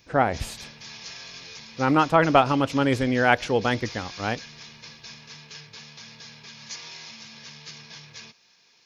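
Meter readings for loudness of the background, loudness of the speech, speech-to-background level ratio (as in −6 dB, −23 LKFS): −40.5 LKFS, −22.5 LKFS, 18.0 dB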